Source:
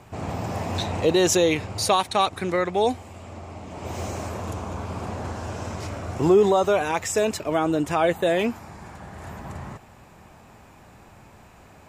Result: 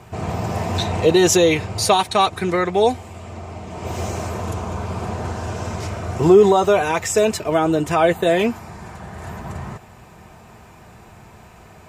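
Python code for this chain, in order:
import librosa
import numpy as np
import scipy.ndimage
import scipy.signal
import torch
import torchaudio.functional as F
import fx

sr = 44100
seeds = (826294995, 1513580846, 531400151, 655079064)

y = fx.notch_comb(x, sr, f0_hz=280.0)
y = F.gain(torch.from_numpy(y), 6.0).numpy()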